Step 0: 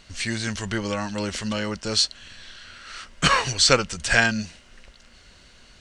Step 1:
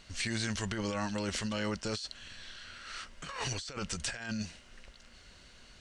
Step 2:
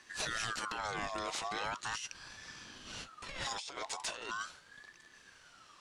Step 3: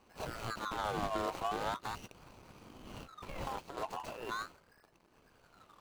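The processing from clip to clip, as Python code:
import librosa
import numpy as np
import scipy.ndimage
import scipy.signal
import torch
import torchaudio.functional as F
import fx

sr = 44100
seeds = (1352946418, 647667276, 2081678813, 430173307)

y1 = fx.over_compress(x, sr, threshold_db=-28.0, ratio=-1.0)
y1 = y1 * librosa.db_to_amplitude(-8.5)
y2 = 10.0 ** (-20.5 / 20.0) * np.tanh(y1 / 10.0 ** (-20.5 / 20.0))
y2 = fx.dynamic_eq(y2, sr, hz=3200.0, q=0.86, threshold_db=-49.0, ratio=4.0, max_db=3)
y2 = fx.ring_lfo(y2, sr, carrier_hz=1300.0, swing_pct=35, hz=0.4)
y2 = y2 * librosa.db_to_amplitude(-1.0)
y3 = scipy.signal.medfilt(y2, 25)
y3 = y3 * librosa.db_to_amplitude(7.0)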